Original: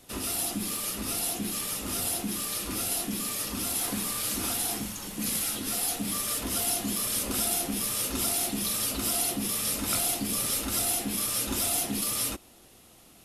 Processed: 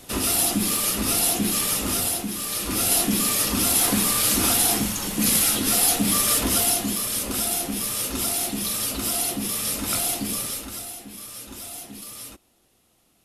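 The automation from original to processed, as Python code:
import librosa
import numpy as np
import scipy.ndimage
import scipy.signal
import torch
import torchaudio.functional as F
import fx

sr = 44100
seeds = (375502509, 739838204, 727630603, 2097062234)

y = fx.gain(x, sr, db=fx.line((1.82, 9.0), (2.33, 2.0), (2.96, 10.0), (6.41, 10.0), (7.06, 3.0), (10.29, 3.0), (10.94, -9.0)))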